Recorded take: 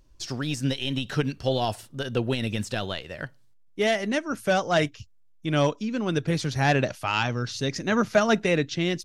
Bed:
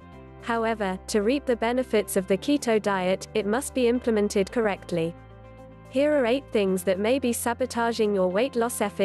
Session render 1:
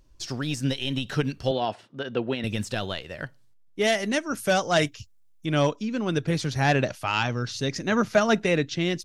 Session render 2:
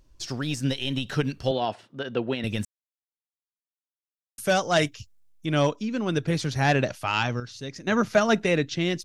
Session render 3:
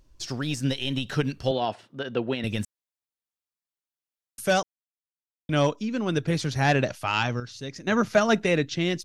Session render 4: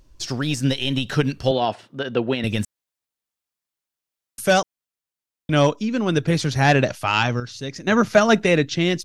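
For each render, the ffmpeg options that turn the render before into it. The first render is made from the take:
ffmpeg -i in.wav -filter_complex "[0:a]asettb=1/sr,asplit=3[link_01][link_02][link_03];[link_01]atrim=end=1.514[link_04];[link_02]atrim=start=1.51:end=2.44,asetpts=PTS-STARTPTS,afade=type=in:duration=0.004:curve=qsin,afade=type=out:start_time=0.926:duration=0.004:curve=qsin,highpass=190,lowpass=3200[link_05];[link_03]atrim=start=2.436[link_06];[link_04][link_05]acrossfade=duration=0.004:curve1=hsin:curve2=qsin[link_07];[link_07][link_06]acrossfade=duration=0.004:curve1=qsin:curve2=hsin,asettb=1/sr,asplit=3[link_08][link_09][link_10];[link_08]atrim=end=3.844[link_11];[link_09]atrim=start=3.84:end=5.46,asetpts=PTS-STARTPTS,afade=type=in:duration=0.004:curve=qsin,afade=type=out:start_time=1.616:duration=0.004:curve=qsin,highshelf=frequency=4800:gain=8.5[link_12];[link_10]atrim=start=5.456[link_13];[link_11][link_12]acrossfade=duration=0.004:curve1=hsin:curve2=qsin[link_14];[link_14][link_13]acrossfade=duration=0.004:curve1=qsin:curve2=hsin" out.wav
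ffmpeg -i in.wav -filter_complex "[0:a]asplit=5[link_01][link_02][link_03][link_04][link_05];[link_01]atrim=end=2.65,asetpts=PTS-STARTPTS,afade=type=out:start_time=2.646:duration=0.004:curve=hsin[link_06];[link_02]atrim=start=2.65:end=4.38,asetpts=PTS-STARTPTS,volume=0[link_07];[link_03]atrim=start=4.38:end=7.402,asetpts=PTS-STARTPTS,afade=type=in:duration=0.004:curve=hsin[link_08];[link_04]atrim=start=7.398:end=7.872,asetpts=PTS-STARTPTS,volume=-8.5dB[link_09];[link_05]atrim=start=7.868[link_10];[link_06][link_07][link_08]concat=n=3:v=0:a=1[link_11];[link_11][link_09]acrossfade=duration=0.004:curve1=hsin:curve2=hsin[link_12];[link_12][link_10]acrossfade=duration=0.004:curve1=hsin:curve2=hsin" out.wav
ffmpeg -i in.wav -filter_complex "[0:a]asplit=3[link_01][link_02][link_03];[link_01]atrim=end=4.63,asetpts=PTS-STARTPTS,afade=type=out:start_time=4.626:duration=0.004:curve=hsin[link_04];[link_02]atrim=start=4.63:end=5.49,asetpts=PTS-STARTPTS,volume=0[link_05];[link_03]atrim=start=5.49,asetpts=PTS-STARTPTS,afade=type=in:duration=0.004:curve=hsin[link_06];[link_04][link_05][link_06]concat=n=3:v=0:a=1" out.wav
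ffmpeg -i in.wav -af "volume=5.5dB" out.wav

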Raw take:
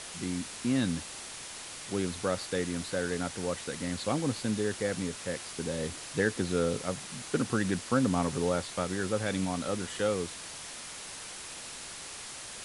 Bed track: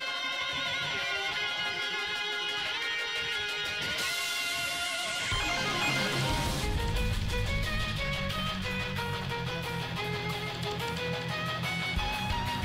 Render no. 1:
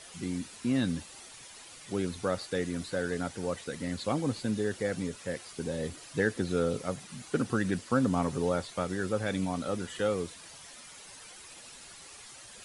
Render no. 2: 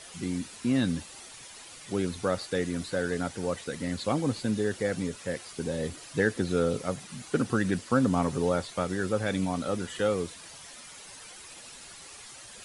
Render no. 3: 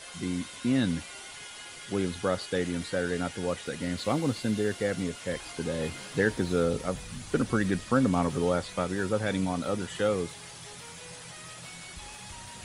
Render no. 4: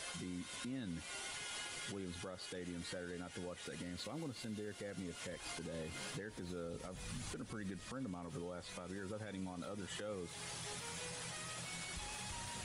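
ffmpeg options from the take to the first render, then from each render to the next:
ffmpeg -i in.wav -af "afftdn=noise_reduction=10:noise_floor=-43" out.wav
ffmpeg -i in.wav -af "volume=2.5dB" out.wav
ffmpeg -i in.wav -i bed.wav -filter_complex "[1:a]volume=-15dB[link_01];[0:a][link_01]amix=inputs=2:normalize=0" out.wav
ffmpeg -i in.wav -af "acompressor=threshold=-40dB:ratio=2.5,alimiter=level_in=12dB:limit=-24dB:level=0:latency=1:release=115,volume=-12dB" out.wav

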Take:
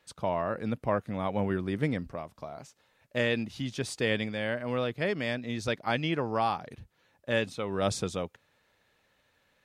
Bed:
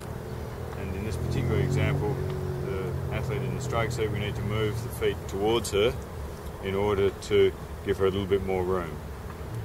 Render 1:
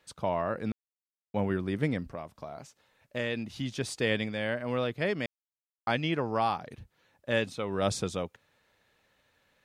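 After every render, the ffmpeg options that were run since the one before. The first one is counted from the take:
ffmpeg -i in.wav -filter_complex "[0:a]asettb=1/sr,asplit=3[link_01][link_02][link_03];[link_01]atrim=end=2.074[link_04];[link_02]atrim=start=2.07:end=3.58,asetpts=PTS-STARTPTS,afade=type=in:duration=0.004:curve=qsin,afade=type=out:start_time=1.506:duration=0.004:curve=qsin,acompressor=threshold=-35dB:ratio=1.5:attack=3.2:release=140:knee=1:detection=peak[link_05];[link_03]atrim=start=3.576[link_06];[link_04][link_05]acrossfade=duration=0.004:curve1=hsin:curve2=qsin[link_07];[link_07][link_06]acrossfade=duration=0.004:curve1=qsin:curve2=hsin,asplit=5[link_08][link_09][link_10][link_11][link_12];[link_08]atrim=end=0.72,asetpts=PTS-STARTPTS,afade=type=out:start_time=0.716:duration=0.004:curve=hsin[link_13];[link_09]atrim=start=0.72:end=1.34,asetpts=PTS-STARTPTS,volume=0[link_14];[link_10]atrim=start=1.34:end=5.26,asetpts=PTS-STARTPTS,afade=type=in:duration=0.004:curve=hsin,afade=type=out:start_time=3.916:duration=0.004:curve=hsin[link_15];[link_11]atrim=start=5.26:end=5.87,asetpts=PTS-STARTPTS,volume=0[link_16];[link_12]atrim=start=5.87,asetpts=PTS-STARTPTS,afade=type=in:duration=0.004:curve=hsin[link_17];[link_13][link_14][link_15][link_16][link_17]concat=n=5:v=0:a=1" out.wav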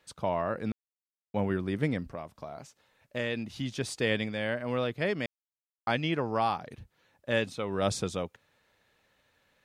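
ffmpeg -i in.wav -af anull out.wav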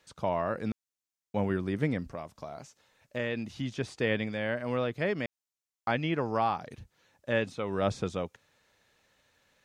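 ffmpeg -i in.wav -filter_complex "[0:a]acrossover=split=3000[link_01][link_02];[link_02]acompressor=threshold=-56dB:ratio=4:attack=1:release=60[link_03];[link_01][link_03]amix=inputs=2:normalize=0,equalizer=frequency=6400:width=1.3:gain=6.5" out.wav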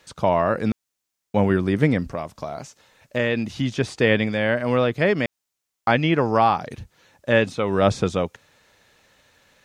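ffmpeg -i in.wav -af "volume=10.5dB" out.wav

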